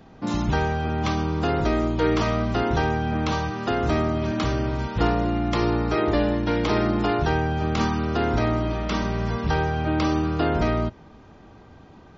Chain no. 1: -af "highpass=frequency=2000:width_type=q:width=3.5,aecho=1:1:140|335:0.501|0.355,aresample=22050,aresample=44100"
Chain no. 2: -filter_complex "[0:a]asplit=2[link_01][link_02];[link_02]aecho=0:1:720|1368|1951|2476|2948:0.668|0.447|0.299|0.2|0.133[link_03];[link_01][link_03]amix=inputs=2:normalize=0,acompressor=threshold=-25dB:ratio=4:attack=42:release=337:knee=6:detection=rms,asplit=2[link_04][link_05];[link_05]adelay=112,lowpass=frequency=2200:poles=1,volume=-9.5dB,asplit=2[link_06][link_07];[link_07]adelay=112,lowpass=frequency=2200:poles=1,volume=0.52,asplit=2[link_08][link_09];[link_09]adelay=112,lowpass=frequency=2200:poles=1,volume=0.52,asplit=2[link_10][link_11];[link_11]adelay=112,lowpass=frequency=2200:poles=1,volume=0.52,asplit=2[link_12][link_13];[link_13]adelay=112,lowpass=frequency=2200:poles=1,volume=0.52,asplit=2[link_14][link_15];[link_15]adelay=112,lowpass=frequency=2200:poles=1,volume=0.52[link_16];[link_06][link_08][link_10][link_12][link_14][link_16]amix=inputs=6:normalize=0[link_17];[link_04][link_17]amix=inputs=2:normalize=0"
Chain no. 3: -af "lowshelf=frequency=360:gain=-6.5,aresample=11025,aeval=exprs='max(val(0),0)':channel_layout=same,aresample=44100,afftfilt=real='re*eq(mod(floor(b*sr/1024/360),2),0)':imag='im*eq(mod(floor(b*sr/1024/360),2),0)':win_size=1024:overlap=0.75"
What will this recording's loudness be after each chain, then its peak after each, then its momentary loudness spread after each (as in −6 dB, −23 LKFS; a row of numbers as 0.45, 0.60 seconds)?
−27.0, −27.0, −34.0 LKFS; −9.0, −13.0, −16.0 dBFS; 5, 2, 4 LU